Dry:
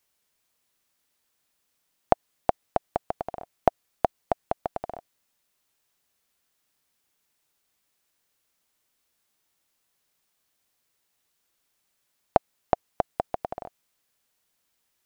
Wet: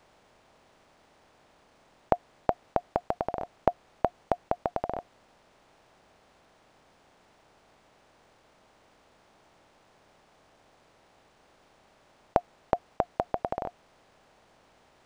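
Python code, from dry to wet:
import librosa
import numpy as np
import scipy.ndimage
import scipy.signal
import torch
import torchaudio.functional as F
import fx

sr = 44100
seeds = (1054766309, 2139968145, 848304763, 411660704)

y = fx.bin_compress(x, sr, power=0.6)
y = fx.notch(y, sr, hz=710.0, q=22.0)
y = np.interp(np.arange(len(y)), np.arange(len(y))[::3], y[::3])
y = y * librosa.db_to_amplitude(-3.0)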